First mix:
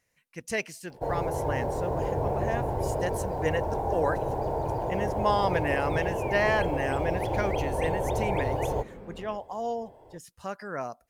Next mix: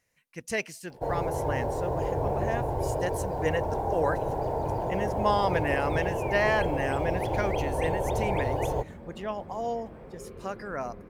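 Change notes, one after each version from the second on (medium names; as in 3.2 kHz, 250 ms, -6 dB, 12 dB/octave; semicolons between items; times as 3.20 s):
second sound: entry +1.75 s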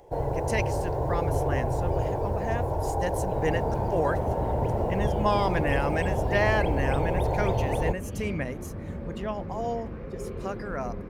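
first sound: entry -0.90 s; second sound +6.5 dB; master: add bass shelf 150 Hz +6 dB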